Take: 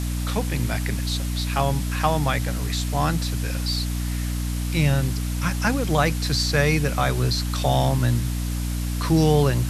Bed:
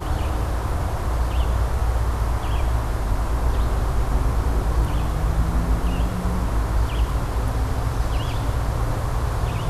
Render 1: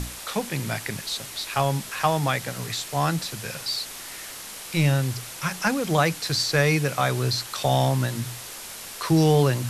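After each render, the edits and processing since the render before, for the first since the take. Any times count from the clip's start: hum notches 60/120/180/240/300 Hz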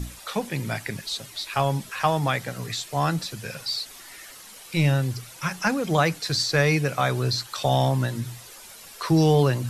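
noise reduction 10 dB, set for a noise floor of -39 dBFS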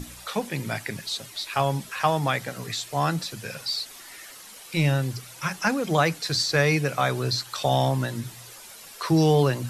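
bass shelf 76 Hz -7 dB; hum notches 60/120/180 Hz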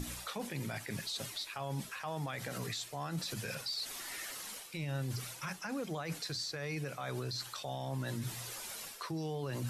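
reverse; compression 12:1, threshold -31 dBFS, peak gain reduction 16.5 dB; reverse; peak limiter -30 dBFS, peak gain reduction 10 dB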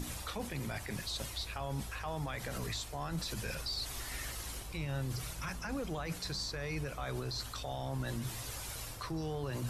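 add bed -25 dB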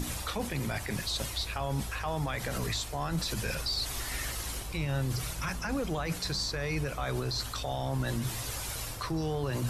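trim +6 dB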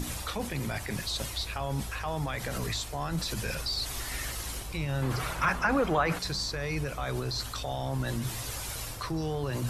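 5.02–6.19 s: FFT filter 110 Hz 0 dB, 1.3 kHz +12 dB, 5.7 kHz -3 dB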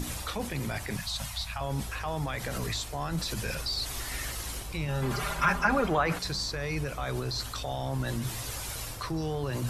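0.97–1.61 s: Chebyshev band-stop 200–720 Hz; 4.88–5.87 s: comb 5 ms

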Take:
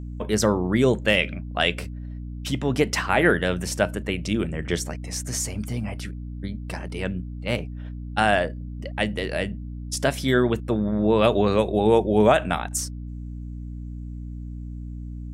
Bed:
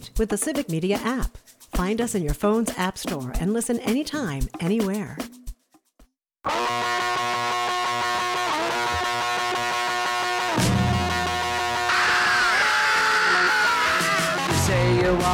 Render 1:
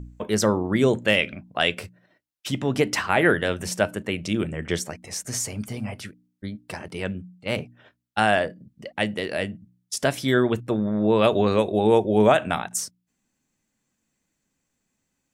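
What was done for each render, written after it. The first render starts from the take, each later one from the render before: de-hum 60 Hz, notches 5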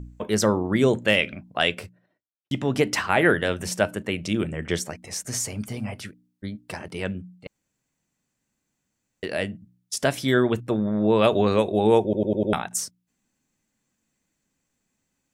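1.63–2.51 s: studio fade out; 7.47–9.23 s: room tone; 12.03 s: stutter in place 0.10 s, 5 plays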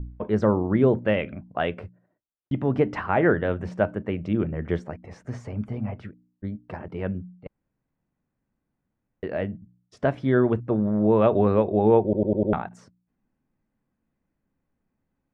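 low-pass 1.3 kHz 12 dB/octave; bass shelf 70 Hz +8.5 dB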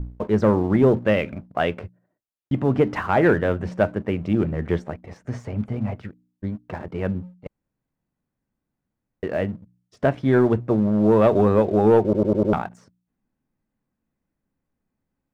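waveshaping leveller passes 1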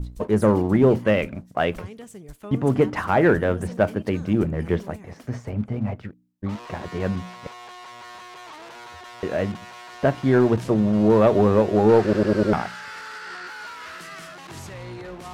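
add bed -17 dB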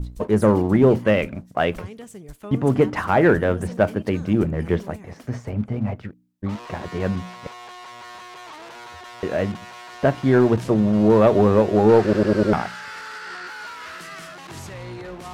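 trim +1.5 dB

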